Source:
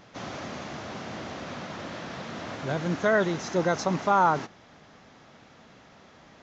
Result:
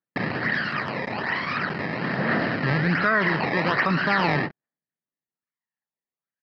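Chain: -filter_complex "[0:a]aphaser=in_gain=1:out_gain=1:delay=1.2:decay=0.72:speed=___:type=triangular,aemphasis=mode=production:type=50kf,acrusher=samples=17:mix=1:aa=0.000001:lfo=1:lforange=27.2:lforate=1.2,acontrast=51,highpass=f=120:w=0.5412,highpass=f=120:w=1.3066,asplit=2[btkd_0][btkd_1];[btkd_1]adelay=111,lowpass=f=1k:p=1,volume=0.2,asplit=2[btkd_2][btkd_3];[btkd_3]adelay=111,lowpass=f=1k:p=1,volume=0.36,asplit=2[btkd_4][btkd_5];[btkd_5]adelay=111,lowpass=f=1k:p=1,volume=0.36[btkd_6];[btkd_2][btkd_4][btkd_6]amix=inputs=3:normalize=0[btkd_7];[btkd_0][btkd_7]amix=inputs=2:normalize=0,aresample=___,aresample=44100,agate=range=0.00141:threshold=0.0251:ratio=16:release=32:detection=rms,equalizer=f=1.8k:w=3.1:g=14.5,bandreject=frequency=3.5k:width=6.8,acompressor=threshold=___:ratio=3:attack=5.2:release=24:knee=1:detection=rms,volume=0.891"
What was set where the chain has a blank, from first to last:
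0.43, 11025, 0.112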